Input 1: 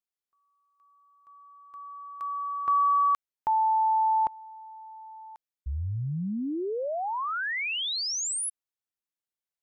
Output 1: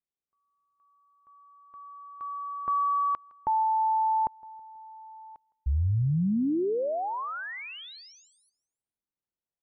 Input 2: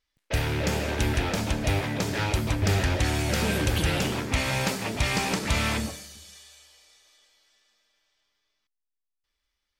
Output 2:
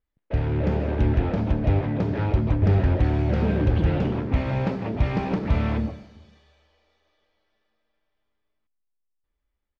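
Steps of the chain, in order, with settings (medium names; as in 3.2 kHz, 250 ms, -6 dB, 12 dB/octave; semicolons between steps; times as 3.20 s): tilt shelf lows +7.5 dB, about 1.1 kHz; level rider gain up to 3 dB; distance through air 260 m; on a send: feedback delay 162 ms, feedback 53%, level -23.5 dB; on the sum: trim -4.5 dB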